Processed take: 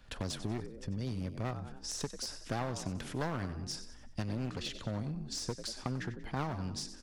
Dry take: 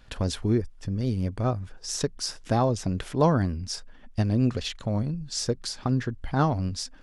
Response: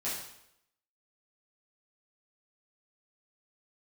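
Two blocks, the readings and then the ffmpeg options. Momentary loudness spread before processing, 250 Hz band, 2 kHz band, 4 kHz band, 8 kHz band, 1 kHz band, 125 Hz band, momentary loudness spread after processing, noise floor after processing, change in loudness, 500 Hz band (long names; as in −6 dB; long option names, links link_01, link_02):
9 LU, −12.0 dB, −5.5 dB, −7.5 dB, −7.5 dB, −11.5 dB, −12.0 dB, 4 LU, −51 dBFS, −11.0 dB, −13.0 dB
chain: -filter_complex "[0:a]asplit=5[link_01][link_02][link_03][link_04][link_05];[link_02]adelay=93,afreqshift=49,volume=-14dB[link_06];[link_03]adelay=186,afreqshift=98,volume=-21.5dB[link_07];[link_04]adelay=279,afreqshift=147,volume=-29.1dB[link_08];[link_05]adelay=372,afreqshift=196,volume=-36.6dB[link_09];[link_01][link_06][link_07][link_08][link_09]amix=inputs=5:normalize=0,aeval=exprs='clip(val(0),-1,0.0501)':channel_layout=same,acrossover=split=110|890[link_10][link_11][link_12];[link_10]acompressor=threshold=-40dB:ratio=4[link_13];[link_11]acompressor=threshold=-32dB:ratio=4[link_14];[link_12]acompressor=threshold=-33dB:ratio=4[link_15];[link_13][link_14][link_15]amix=inputs=3:normalize=0,volume=-4.5dB"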